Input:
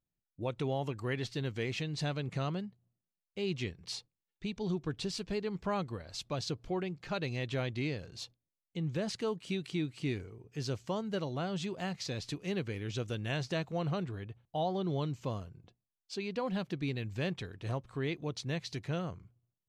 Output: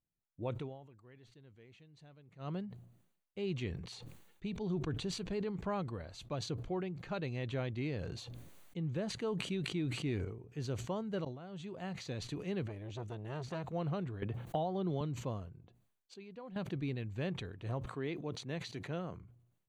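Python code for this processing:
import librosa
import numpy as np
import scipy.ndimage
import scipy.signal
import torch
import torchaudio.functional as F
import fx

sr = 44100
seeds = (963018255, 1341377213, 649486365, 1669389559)

y = fx.sustainer(x, sr, db_per_s=57.0, at=(3.58, 5.44))
y = fx.sustainer(y, sr, db_per_s=28.0, at=(7.88, 8.77))
y = fx.sustainer(y, sr, db_per_s=23.0, at=(9.3, 10.25))
y = fx.transformer_sat(y, sr, knee_hz=740.0, at=(12.66, 13.66))
y = fx.band_squash(y, sr, depth_pct=100, at=(14.22, 15.01))
y = fx.highpass(y, sr, hz=160.0, slope=12, at=(17.85, 19.16), fade=0.02)
y = fx.edit(y, sr, fx.fade_down_up(start_s=0.56, length_s=1.96, db=-21.0, fade_s=0.14),
    fx.fade_in_from(start_s=11.25, length_s=0.79, floor_db=-22.5),
    fx.clip_gain(start_s=16.14, length_s=0.42, db=-11.0), tone=tone)
y = fx.high_shelf(y, sr, hz=2400.0, db=-8.0)
y = fx.notch(y, sr, hz=5200.0, q=5.0)
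y = fx.sustainer(y, sr, db_per_s=75.0)
y = F.gain(torch.from_numpy(y), -2.5).numpy()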